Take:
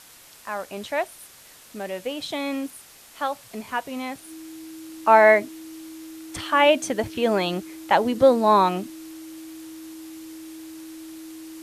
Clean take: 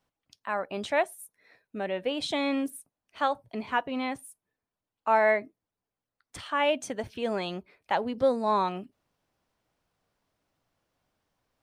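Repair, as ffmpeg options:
ffmpeg -i in.wav -af "bandreject=frequency=320:width=30,afwtdn=0.0045,asetnsamples=nb_out_samples=441:pad=0,asendcmd='4.67 volume volume -8.5dB',volume=0dB" out.wav

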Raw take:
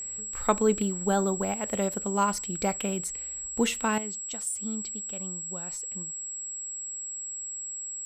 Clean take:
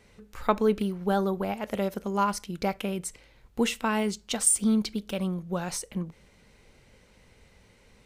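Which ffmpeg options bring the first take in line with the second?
ffmpeg -i in.wav -af "bandreject=frequency=7700:width=30,asetnsamples=nb_out_samples=441:pad=0,asendcmd='3.98 volume volume 11.5dB',volume=0dB" out.wav

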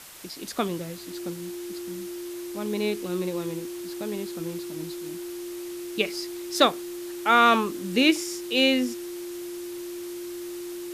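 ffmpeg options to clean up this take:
ffmpeg -i in.wav -af "adeclick=threshold=4,bandreject=frequency=350:width=30,afftdn=noise_reduction=30:noise_floor=-36" out.wav

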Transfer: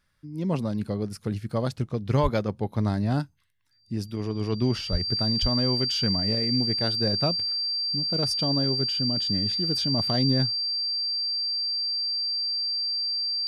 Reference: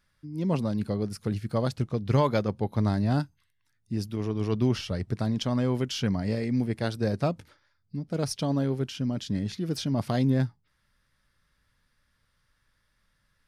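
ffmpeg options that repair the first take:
ffmpeg -i in.wav -filter_complex "[0:a]bandreject=frequency=4700:width=30,asplit=3[link_01][link_02][link_03];[link_01]afade=type=out:start_time=2.22:duration=0.02[link_04];[link_02]highpass=frequency=140:width=0.5412,highpass=frequency=140:width=1.3066,afade=type=in:start_time=2.22:duration=0.02,afade=type=out:start_time=2.34:duration=0.02[link_05];[link_03]afade=type=in:start_time=2.34:duration=0.02[link_06];[link_04][link_05][link_06]amix=inputs=3:normalize=0,asplit=3[link_07][link_08][link_09];[link_07]afade=type=out:start_time=4.91:duration=0.02[link_10];[link_08]highpass=frequency=140:width=0.5412,highpass=frequency=140:width=1.3066,afade=type=in:start_time=4.91:duration=0.02,afade=type=out:start_time=5.03:duration=0.02[link_11];[link_09]afade=type=in:start_time=5.03:duration=0.02[link_12];[link_10][link_11][link_12]amix=inputs=3:normalize=0,asplit=3[link_13][link_14][link_15];[link_13]afade=type=out:start_time=5.41:duration=0.02[link_16];[link_14]highpass=frequency=140:width=0.5412,highpass=frequency=140:width=1.3066,afade=type=in:start_time=5.41:duration=0.02,afade=type=out:start_time=5.53:duration=0.02[link_17];[link_15]afade=type=in:start_time=5.53:duration=0.02[link_18];[link_16][link_17][link_18]amix=inputs=3:normalize=0" out.wav

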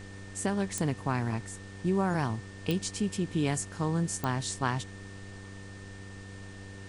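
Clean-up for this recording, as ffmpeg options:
ffmpeg -i in.wav -af "adeclick=threshold=4,bandreject=frequency=97.6:width_type=h:width=4,bandreject=frequency=195.2:width_type=h:width=4,bandreject=frequency=292.8:width_type=h:width=4,bandreject=frequency=390.4:width_type=h:width=4,bandreject=frequency=488:width_type=h:width=4,bandreject=frequency=1800:width=30,afftdn=noise_reduction=30:noise_floor=-45" out.wav

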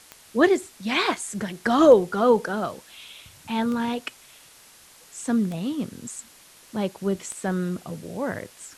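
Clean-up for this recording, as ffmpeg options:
ffmpeg -i in.wav -af "adeclick=threshold=4,afwtdn=0.0035" out.wav

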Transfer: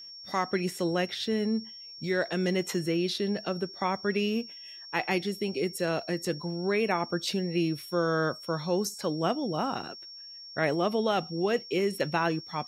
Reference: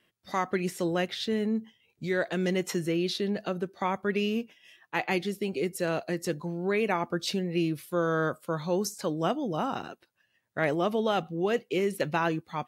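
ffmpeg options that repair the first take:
ffmpeg -i in.wav -af "bandreject=frequency=5500:width=30" out.wav

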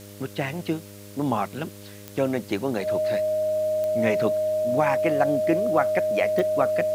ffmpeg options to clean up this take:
ffmpeg -i in.wav -af "adeclick=threshold=4,bandreject=frequency=101.3:width_type=h:width=4,bandreject=frequency=202.6:width_type=h:width=4,bandreject=frequency=303.9:width_type=h:width=4,bandreject=frequency=405.2:width_type=h:width=4,bandreject=frequency=506.5:width_type=h:width=4,bandreject=frequency=607.8:width_type=h:width=4,bandreject=frequency=620:width=30,afwtdn=0.004" out.wav

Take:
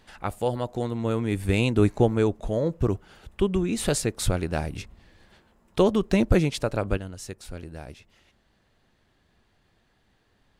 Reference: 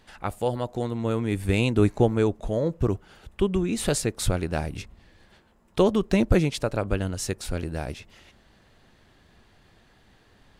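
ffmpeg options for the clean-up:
ffmpeg -i in.wav -af "asetnsamples=nb_out_samples=441:pad=0,asendcmd='6.97 volume volume 8.5dB',volume=0dB" out.wav

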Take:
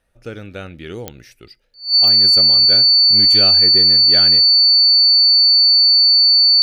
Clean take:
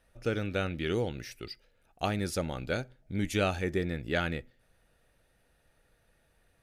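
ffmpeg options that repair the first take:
ffmpeg -i in.wav -af "adeclick=threshold=4,bandreject=frequency=4500:width=30,asetnsamples=nb_out_samples=441:pad=0,asendcmd='2.24 volume volume -4dB',volume=0dB" out.wav

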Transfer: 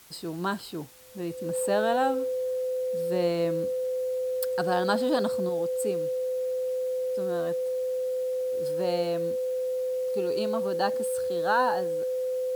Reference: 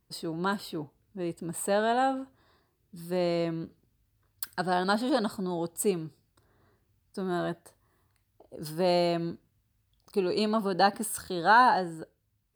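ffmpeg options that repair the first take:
ffmpeg -i in.wav -af "bandreject=frequency=510:width=30,afwtdn=0.0022,asetnsamples=nb_out_samples=441:pad=0,asendcmd='5.49 volume volume 5dB',volume=0dB" out.wav

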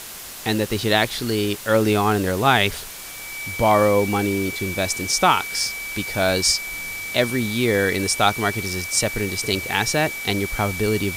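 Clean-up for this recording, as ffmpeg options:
ffmpeg -i in.wav -af "bandreject=frequency=2300:width=30,afwtdn=0.018" out.wav

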